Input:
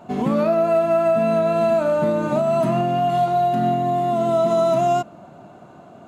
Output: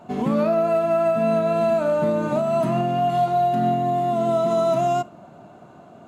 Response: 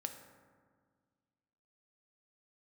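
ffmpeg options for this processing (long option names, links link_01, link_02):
-filter_complex "[0:a]asplit=2[link_01][link_02];[1:a]atrim=start_sample=2205,atrim=end_sample=3087,asetrate=35280,aresample=44100[link_03];[link_02][link_03]afir=irnorm=-1:irlink=0,volume=-7.5dB[link_04];[link_01][link_04]amix=inputs=2:normalize=0,volume=-4.5dB"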